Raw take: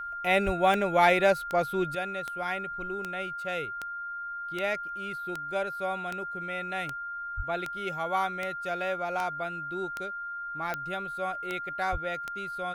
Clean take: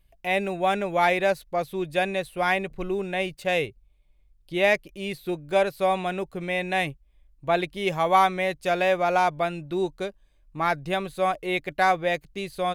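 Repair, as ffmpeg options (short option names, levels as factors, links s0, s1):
-filter_complex "[0:a]adeclick=t=4,bandreject=f=1400:w=30,asplit=3[s0][s1][s2];[s0]afade=t=out:st=0.45:d=0.02[s3];[s1]highpass=f=140:w=0.5412,highpass=f=140:w=1.3066,afade=t=in:st=0.45:d=0.02,afade=t=out:st=0.57:d=0.02[s4];[s2]afade=t=in:st=0.57:d=0.02[s5];[s3][s4][s5]amix=inputs=3:normalize=0,asplit=3[s6][s7][s8];[s6]afade=t=out:st=7.36:d=0.02[s9];[s7]highpass=f=140:w=0.5412,highpass=f=140:w=1.3066,afade=t=in:st=7.36:d=0.02,afade=t=out:st=7.48:d=0.02[s10];[s8]afade=t=in:st=7.48:d=0.02[s11];[s9][s10][s11]amix=inputs=3:normalize=0,asplit=3[s12][s13][s14];[s12]afade=t=out:st=11.91:d=0.02[s15];[s13]highpass=f=140:w=0.5412,highpass=f=140:w=1.3066,afade=t=in:st=11.91:d=0.02,afade=t=out:st=12.03:d=0.02[s16];[s14]afade=t=in:st=12.03:d=0.02[s17];[s15][s16][s17]amix=inputs=3:normalize=0,asetnsamples=n=441:p=0,asendcmd='1.95 volume volume 10dB',volume=1"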